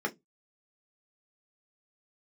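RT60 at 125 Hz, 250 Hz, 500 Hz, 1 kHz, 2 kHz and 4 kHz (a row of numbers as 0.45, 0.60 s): 0.35, 0.25, 0.20, 0.15, 0.15, 0.15 s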